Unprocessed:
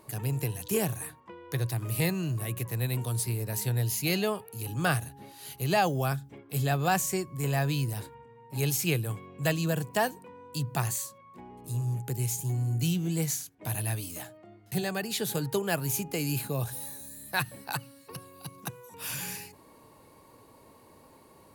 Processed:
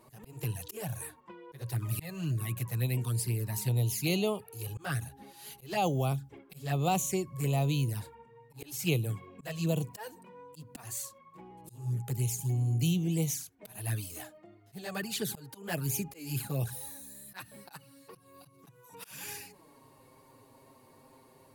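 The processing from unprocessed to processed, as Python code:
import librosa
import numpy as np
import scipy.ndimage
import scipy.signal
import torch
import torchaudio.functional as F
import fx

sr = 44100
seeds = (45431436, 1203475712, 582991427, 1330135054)

y = fx.auto_swell(x, sr, attack_ms=249.0)
y = fx.env_flanger(y, sr, rest_ms=8.9, full_db=-25.5)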